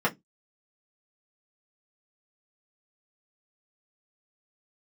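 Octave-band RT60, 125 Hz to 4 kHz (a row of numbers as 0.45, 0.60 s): 0.25, 0.25, 0.15, 0.10, 0.10, 0.10 s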